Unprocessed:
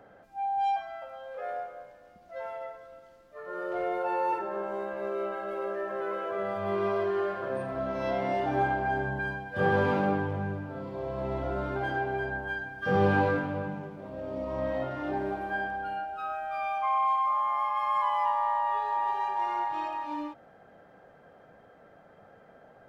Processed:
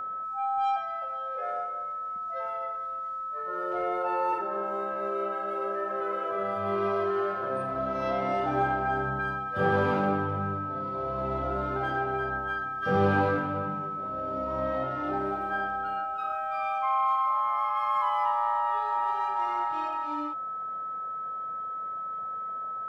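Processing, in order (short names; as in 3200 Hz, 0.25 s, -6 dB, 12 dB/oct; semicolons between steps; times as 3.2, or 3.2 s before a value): whine 1300 Hz -32 dBFS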